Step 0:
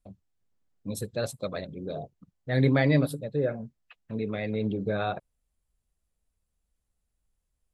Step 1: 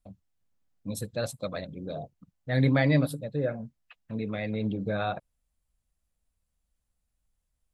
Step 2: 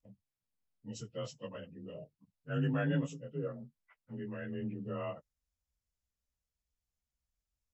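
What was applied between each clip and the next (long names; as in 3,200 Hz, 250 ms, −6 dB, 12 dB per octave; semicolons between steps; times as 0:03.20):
parametric band 400 Hz −7.5 dB 0.32 octaves
partials spread apart or drawn together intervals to 89%; level −8 dB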